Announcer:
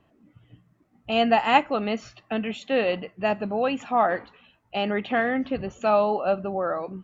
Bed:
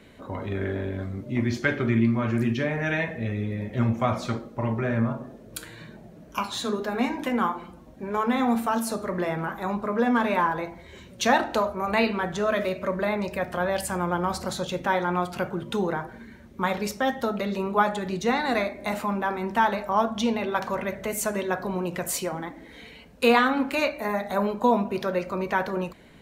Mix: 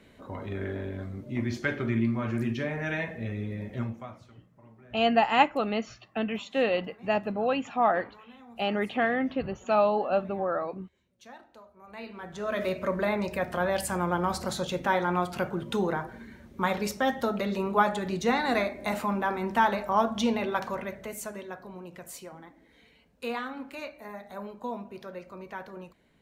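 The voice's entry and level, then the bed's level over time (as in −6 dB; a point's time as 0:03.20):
3.85 s, −2.5 dB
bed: 0:03.73 −5 dB
0:04.31 −28 dB
0:11.67 −28 dB
0:12.70 −1.5 dB
0:20.43 −1.5 dB
0:21.63 −14.5 dB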